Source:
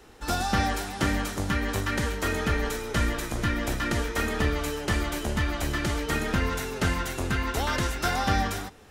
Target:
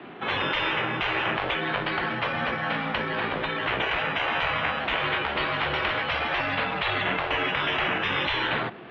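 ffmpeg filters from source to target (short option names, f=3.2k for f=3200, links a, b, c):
-filter_complex "[0:a]asettb=1/sr,asplit=3[a][b][c];[a]atrim=end=1.534[d];[b]atrim=start=1.53:end=3.66,asetpts=PTS-STARTPTS,afade=t=in:d=0.004:c=qsin,afade=t=out:st=2.126:d=0.004:c=qsin,acompressor=threshold=-28dB:ratio=6[e];[c]atrim=start=3.656[f];[d][e]acrossfade=d=0.004:c1=hsin:c2=qsin[g];[g][f]acrossfade=d=0.004:c1=qsin:c2=hsin,acrusher=samples=8:mix=1:aa=0.000001:lfo=1:lforange=4.8:lforate=0.29,acontrast=33,highpass=f=220:t=q:w=0.5412,highpass=f=220:t=q:w=1.307,lowpass=f=3.3k:t=q:w=0.5176,lowpass=f=3.3k:t=q:w=0.7071,lowpass=f=3.3k:t=q:w=1.932,afreqshift=-73,afftfilt=real='re*lt(hypot(re,im),0.126)':imag='im*lt(hypot(re,im),0.126)':win_size=1024:overlap=0.75,volume=6dB"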